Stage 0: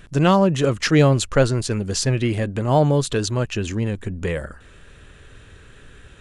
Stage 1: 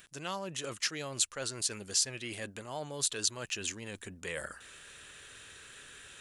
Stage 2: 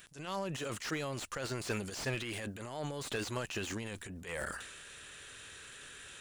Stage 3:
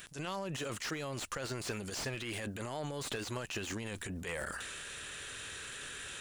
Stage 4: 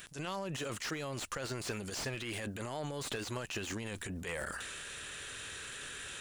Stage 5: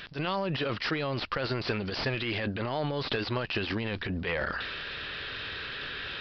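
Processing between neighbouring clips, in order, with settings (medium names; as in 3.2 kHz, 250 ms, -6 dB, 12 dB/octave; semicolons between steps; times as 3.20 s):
reverse; compression 6:1, threshold -28 dBFS, peak gain reduction 17 dB; reverse; tilt EQ +4 dB/octave; trim -5 dB
transient shaper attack -12 dB, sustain +8 dB; slew-rate limiter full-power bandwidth 44 Hz; trim +1 dB
compression, threshold -42 dBFS, peak gain reduction 11 dB; trim +6 dB
no audible change
resampled via 11.025 kHz; trim +8.5 dB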